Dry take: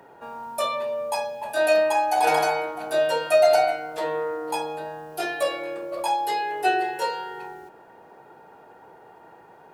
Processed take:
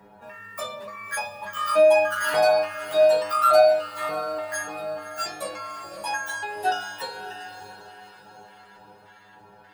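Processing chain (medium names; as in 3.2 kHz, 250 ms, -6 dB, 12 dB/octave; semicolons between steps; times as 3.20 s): pitch shift switched off and on +11.5 st, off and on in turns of 292 ms; resonant low shelf 240 Hz +7 dB, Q 1.5; inharmonic resonator 100 Hz, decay 0.37 s, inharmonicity 0.002; on a send: echo that smears into a reverb 609 ms, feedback 43%, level -12 dB; on the sum: trim +8.5 dB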